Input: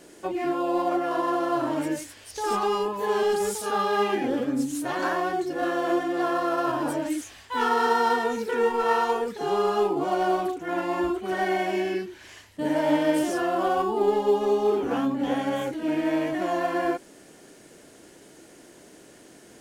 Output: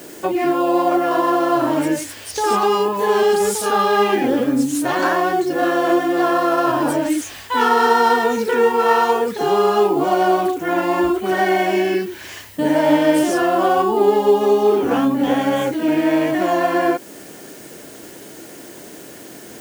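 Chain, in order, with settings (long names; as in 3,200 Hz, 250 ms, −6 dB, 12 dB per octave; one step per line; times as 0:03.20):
high-pass filter 67 Hz
in parallel at −0.5 dB: downward compressor, threshold −32 dBFS, peak gain reduction 14.5 dB
on the sum: background noise violet −51 dBFS
level +6 dB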